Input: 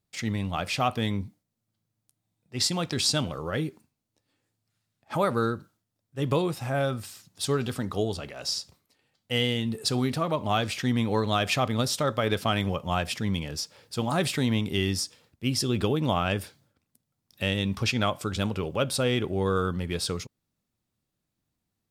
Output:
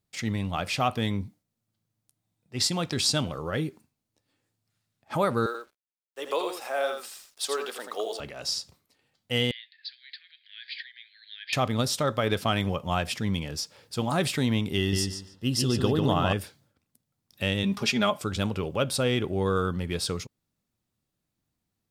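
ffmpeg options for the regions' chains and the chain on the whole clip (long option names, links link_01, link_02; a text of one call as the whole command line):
ffmpeg -i in.wav -filter_complex "[0:a]asettb=1/sr,asplit=3[link_01][link_02][link_03];[link_01]atrim=end=5.464[link_04];[link_02]atrim=start=5.46:end=8.2,asetpts=PTS-STARTPTS,afade=type=in:duration=0.004:curve=qsin,afade=type=out:start_time=2.736:duration=0.004:curve=qsin,highpass=frequency=440:width=0.5412,highpass=frequency=440:width=1.3066,acrusher=bits=8:mix=0:aa=0.5,aecho=1:1:83:0.501,atrim=end_sample=120834[link_05];[link_03]atrim=start=8.196[link_06];[link_04][link_05]acrossfade=duration=0.004:curve1=hsin:curve2=qsin[link_07];[link_07][link_06]acrossfade=duration=0.004:curve1=qsin:curve2=hsin,asettb=1/sr,asplit=3[link_08][link_09][link_10];[link_08]atrim=end=9.514[link_11];[link_09]atrim=start=9.51:end=11.53,asetpts=PTS-STARTPTS,afade=type=in:duration=0.004:curve=qsin,afade=type=out:start_time=2.016:duration=0.004:curve=qsin,equalizer=frequency=2700:width_type=o:width=0.32:gain=-9.5,acompressor=threshold=-28dB:ratio=10:attack=3.2:release=140:knee=1:detection=peak,asuperpass=centerf=2800:order=20:qfactor=0.91[link_12];[link_10]atrim=start=11.526[link_13];[link_11][link_12]acrossfade=duration=0.004:curve1=hsin:curve2=qsin[link_14];[link_14][link_13]acrossfade=duration=0.004:curve1=qsin:curve2=hsin,asettb=1/sr,asplit=3[link_15][link_16][link_17];[link_15]atrim=end=14.784[link_18];[link_16]atrim=start=14.78:end=16.33,asetpts=PTS-STARTPTS,afade=type=in:duration=0.004:curve=qsin,afade=type=out:start_time=1.546:duration=0.004:curve=qsin,asuperstop=centerf=2300:order=4:qfactor=5.4,asplit=2[link_19][link_20];[link_20]adelay=145,lowpass=frequency=4200:poles=1,volume=-4dB,asplit=2[link_21][link_22];[link_22]adelay=145,lowpass=frequency=4200:poles=1,volume=0.23,asplit=2[link_23][link_24];[link_24]adelay=145,lowpass=frequency=4200:poles=1,volume=0.23[link_25];[link_19][link_21][link_23][link_25]amix=inputs=4:normalize=0,atrim=end_sample=68355[link_26];[link_17]atrim=start=16.326[link_27];[link_18][link_26]acrossfade=duration=0.004:curve1=hsin:curve2=qsin[link_28];[link_28][link_27]acrossfade=duration=0.004:curve1=qsin:curve2=hsin,asettb=1/sr,asplit=3[link_29][link_30][link_31];[link_29]atrim=end=17.634[link_32];[link_30]atrim=start=17.63:end=18.19,asetpts=PTS-STARTPTS,afade=type=in:duration=0.004:curve=qsin,afade=type=out:start_time=0.556:duration=0.004:curve=qsin,highpass=130,aecho=1:1:4.9:0.69,atrim=end_sample=24696[link_33];[link_31]atrim=start=18.186[link_34];[link_32][link_33]acrossfade=duration=0.004:curve1=hsin:curve2=qsin[link_35];[link_35][link_34]acrossfade=duration=0.004:curve1=qsin:curve2=hsin" out.wav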